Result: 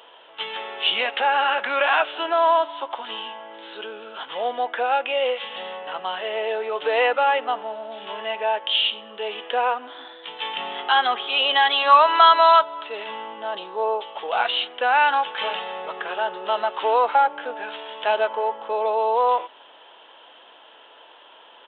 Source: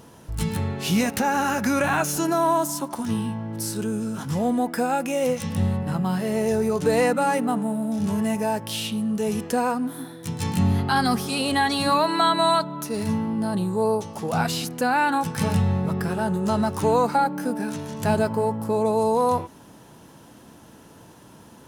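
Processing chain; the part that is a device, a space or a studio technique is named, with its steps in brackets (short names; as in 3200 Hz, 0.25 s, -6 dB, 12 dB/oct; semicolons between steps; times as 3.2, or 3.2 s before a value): musical greeting card (downsampling 8000 Hz; HPF 520 Hz 24 dB/oct; bell 3100 Hz +11 dB 0.43 oct); 11.7–12.63 dynamic EQ 1200 Hz, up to +7 dB, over -35 dBFS, Q 3; gain +3.5 dB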